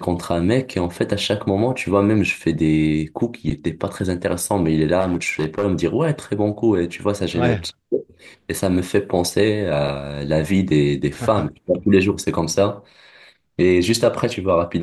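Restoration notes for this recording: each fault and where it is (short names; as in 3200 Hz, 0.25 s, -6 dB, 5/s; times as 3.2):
5–5.65 clipped -14.5 dBFS
9.88 gap 4.7 ms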